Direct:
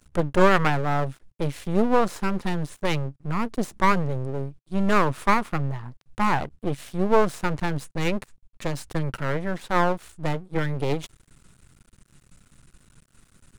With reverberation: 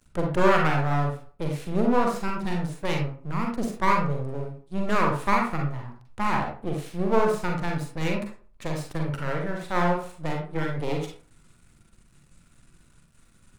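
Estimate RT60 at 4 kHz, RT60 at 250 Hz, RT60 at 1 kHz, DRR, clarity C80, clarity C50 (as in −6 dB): 0.25 s, 0.40 s, 0.45 s, 0.0 dB, 9.5 dB, 4.0 dB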